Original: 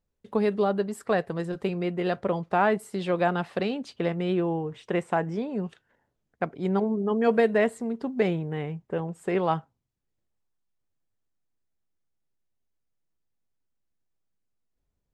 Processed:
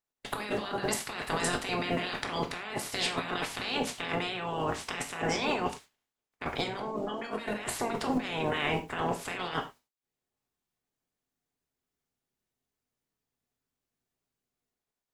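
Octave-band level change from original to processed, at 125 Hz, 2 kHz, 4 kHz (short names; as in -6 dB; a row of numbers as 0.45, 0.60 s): -7.5, 0.0, +8.5 dB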